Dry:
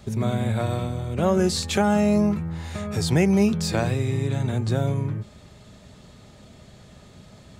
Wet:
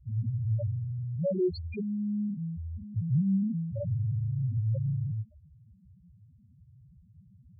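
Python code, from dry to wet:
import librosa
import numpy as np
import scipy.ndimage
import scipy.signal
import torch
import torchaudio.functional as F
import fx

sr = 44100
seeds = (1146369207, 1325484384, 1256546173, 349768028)

p1 = np.clip(x, -10.0 ** (-18.5 / 20.0), 10.0 ** (-18.5 / 20.0))
p2 = x + F.gain(torch.from_numpy(p1), -5.5).numpy()
p3 = fx.spec_topn(p2, sr, count=1)
p4 = fx.peak_eq(p3, sr, hz=210.0, db=-7.0, octaves=0.28)
y = F.gain(torch.from_numpy(p4), -1.5).numpy()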